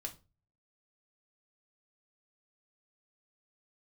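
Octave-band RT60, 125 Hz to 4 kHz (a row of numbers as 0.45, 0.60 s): 0.65, 0.40, 0.35, 0.30, 0.25, 0.25 s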